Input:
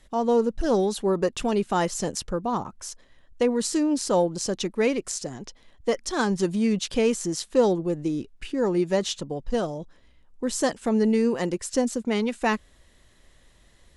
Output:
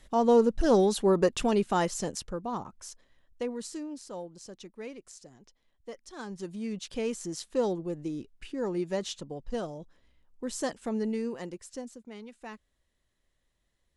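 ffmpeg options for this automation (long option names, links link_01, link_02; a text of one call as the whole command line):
ffmpeg -i in.wav -af "volume=10.5dB,afade=type=out:start_time=1.23:duration=1.09:silence=0.421697,afade=type=out:start_time=2.88:duration=1.18:silence=0.281838,afade=type=in:start_time=6.09:duration=1.29:silence=0.298538,afade=type=out:start_time=10.78:duration=1.23:silence=0.251189" out.wav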